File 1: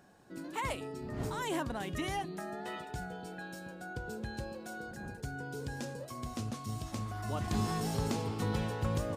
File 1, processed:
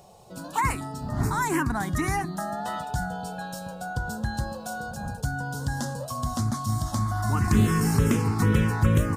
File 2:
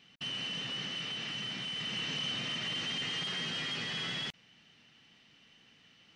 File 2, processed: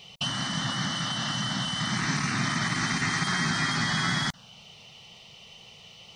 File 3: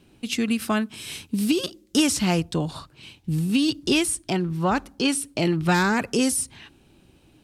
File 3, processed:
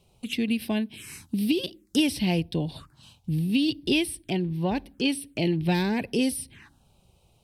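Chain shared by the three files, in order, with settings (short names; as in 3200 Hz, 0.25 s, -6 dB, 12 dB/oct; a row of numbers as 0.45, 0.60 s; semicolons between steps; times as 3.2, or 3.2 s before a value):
envelope phaser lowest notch 270 Hz, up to 1300 Hz, full sweep at -25 dBFS; match loudness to -27 LUFS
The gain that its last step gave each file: +13.5, +17.0, -2.0 dB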